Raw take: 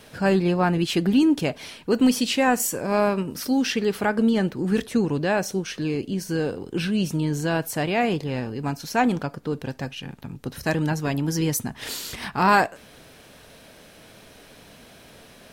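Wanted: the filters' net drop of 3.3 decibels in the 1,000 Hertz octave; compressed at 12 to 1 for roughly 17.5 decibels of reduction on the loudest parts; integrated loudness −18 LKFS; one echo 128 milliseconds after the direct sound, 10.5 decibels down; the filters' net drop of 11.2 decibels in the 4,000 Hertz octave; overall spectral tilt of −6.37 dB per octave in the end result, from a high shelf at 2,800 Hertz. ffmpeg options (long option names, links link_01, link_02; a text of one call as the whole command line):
ffmpeg -i in.wav -af "equalizer=frequency=1000:width_type=o:gain=-3,highshelf=frequency=2800:gain=-8,equalizer=frequency=4000:width_type=o:gain=-9,acompressor=threshold=-33dB:ratio=12,aecho=1:1:128:0.299,volume=19.5dB" out.wav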